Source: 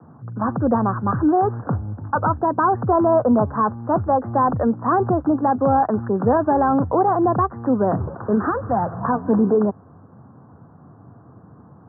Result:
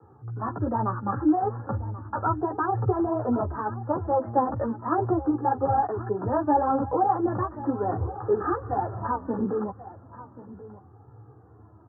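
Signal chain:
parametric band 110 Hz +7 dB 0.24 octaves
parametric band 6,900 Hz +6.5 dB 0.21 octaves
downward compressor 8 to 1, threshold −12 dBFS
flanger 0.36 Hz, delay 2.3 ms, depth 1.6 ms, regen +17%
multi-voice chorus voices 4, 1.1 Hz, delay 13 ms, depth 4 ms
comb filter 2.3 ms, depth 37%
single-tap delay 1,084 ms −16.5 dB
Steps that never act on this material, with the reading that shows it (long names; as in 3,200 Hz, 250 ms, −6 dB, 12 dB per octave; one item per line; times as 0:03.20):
parametric band 6,900 Hz: nothing at its input above 1,700 Hz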